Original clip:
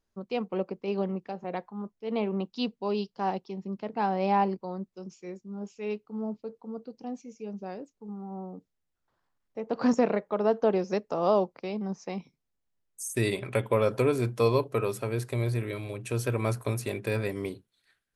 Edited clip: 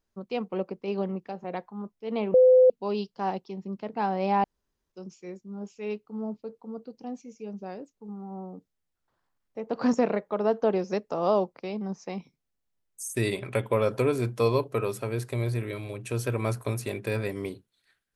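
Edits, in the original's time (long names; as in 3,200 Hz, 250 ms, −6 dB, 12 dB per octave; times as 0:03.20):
0:02.34–0:02.70: beep over 510 Hz −13 dBFS
0:04.44–0:04.92: fill with room tone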